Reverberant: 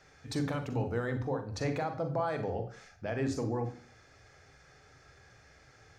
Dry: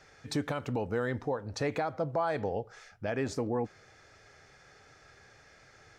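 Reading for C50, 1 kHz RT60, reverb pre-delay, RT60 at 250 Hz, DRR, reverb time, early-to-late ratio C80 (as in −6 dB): 10.5 dB, 0.55 s, 39 ms, 0.55 s, 7.0 dB, 0.55 s, 15.5 dB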